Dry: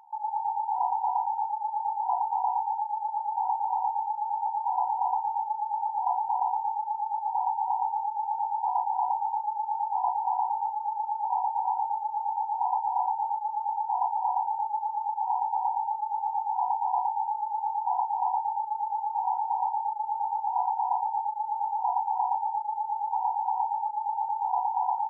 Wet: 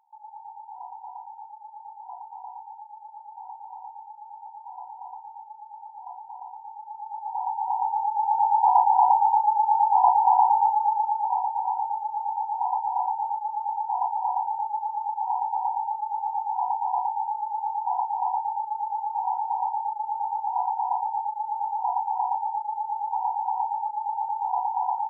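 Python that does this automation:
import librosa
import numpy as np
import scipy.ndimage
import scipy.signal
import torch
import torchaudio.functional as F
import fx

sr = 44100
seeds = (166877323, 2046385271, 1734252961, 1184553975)

y = fx.gain(x, sr, db=fx.line((6.58, -13.0), (7.32, -2.5), (8.55, 9.0), (10.79, 9.0), (11.47, 1.0)))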